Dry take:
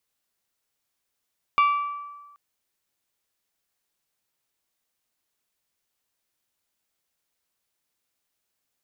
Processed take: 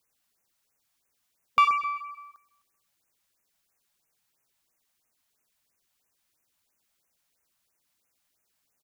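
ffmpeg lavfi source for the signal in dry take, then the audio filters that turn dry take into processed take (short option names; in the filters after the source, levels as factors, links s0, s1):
-f lavfi -i "aevalsrc='0.188*pow(10,-3*t/1.31)*sin(2*PI*1160*t)+0.0708*pow(10,-3*t/0.806)*sin(2*PI*2320*t)+0.0266*pow(10,-3*t/0.71)*sin(2*PI*2784*t)+0.01*pow(10,-3*t/0.607)*sin(2*PI*3480*t)+0.00376*pow(10,-3*t/0.496)*sin(2*PI*4640*t)':d=0.78:s=44100"
-filter_complex "[0:a]asplit=2[s0][s1];[s1]asoftclip=type=tanh:threshold=0.0531,volume=0.501[s2];[s0][s2]amix=inputs=2:normalize=0,aecho=1:1:128|256|384|512:0.224|0.0873|0.0341|0.0133,afftfilt=real='re*(1-between(b*sr/1024,340*pow(4200/340,0.5+0.5*sin(2*PI*3*pts/sr))/1.41,340*pow(4200/340,0.5+0.5*sin(2*PI*3*pts/sr))*1.41))':imag='im*(1-between(b*sr/1024,340*pow(4200/340,0.5+0.5*sin(2*PI*3*pts/sr))/1.41,340*pow(4200/340,0.5+0.5*sin(2*PI*3*pts/sr))*1.41))':win_size=1024:overlap=0.75"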